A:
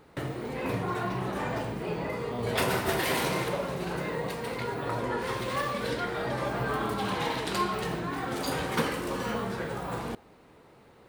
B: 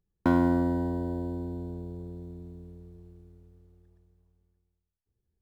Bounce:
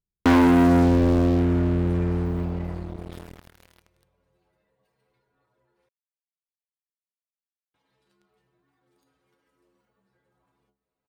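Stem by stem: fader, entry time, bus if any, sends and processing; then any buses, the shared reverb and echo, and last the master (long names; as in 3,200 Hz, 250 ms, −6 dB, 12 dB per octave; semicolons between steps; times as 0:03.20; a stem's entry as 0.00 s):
−11.0 dB, 0.55 s, muted 0:05.89–0:07.74, no send, brickwall limiter −22 dBFS, peak gain reduction 8 dB; downward compressor 16 to 1, threshold −40 dBFS, peak gain reduction 13.5 dB; stiff-string resonator 64 Hz, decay 0.38 s, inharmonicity 0.008
−1.0 dB, 0.00 s, no send, adaptive Wiener filter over 41 samples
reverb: not used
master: leveller curve on the samples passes 5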